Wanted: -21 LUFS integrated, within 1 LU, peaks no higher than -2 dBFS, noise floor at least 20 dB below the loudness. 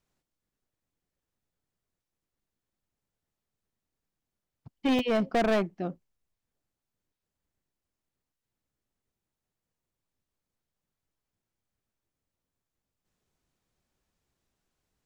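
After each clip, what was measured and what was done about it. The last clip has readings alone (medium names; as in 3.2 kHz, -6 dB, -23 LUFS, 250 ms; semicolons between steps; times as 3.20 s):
clipped samples 0.8%; clipping level -21.5 dBFS; dropouts 1; longest dropout 2.7 ms; loudness -28.0 LUFS; peak level -21.5 dBFS; loudness target -21.0 LUFS
-> clip repair -21.5 dBFS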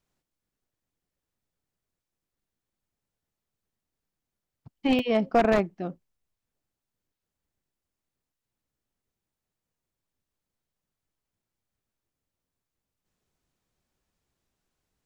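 clipped samples 0.0%; dropouts 1; longest dropout 2.7 ms
-> interpolate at 4.99 s, 2.7 ms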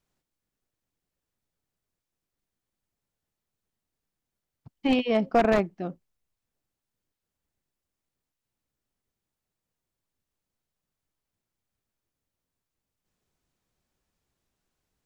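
dropouts 0; loudness -25.0 LUFS; peak level -12.5 dBFS; loudness target -21.0 LUFS
-> trim +4 dB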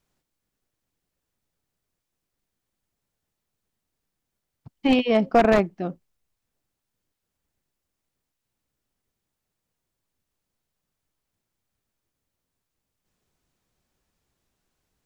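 loudness -21.0 LUFS; peak level -8.5 dBFS; noise floor -83 dBFS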